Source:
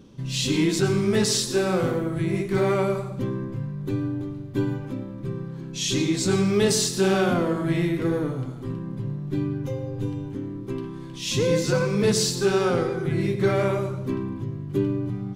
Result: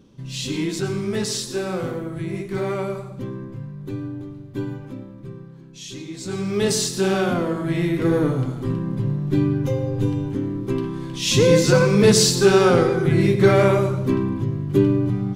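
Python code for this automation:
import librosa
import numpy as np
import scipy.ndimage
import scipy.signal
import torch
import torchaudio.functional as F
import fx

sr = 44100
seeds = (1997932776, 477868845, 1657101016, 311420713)

y = fx.gain(x, sr, db=fx.line((4.99, -3.0), (6.04, -12.0), (6.67, 0.5), (7.72, 0.5), (8.26, 7.0)))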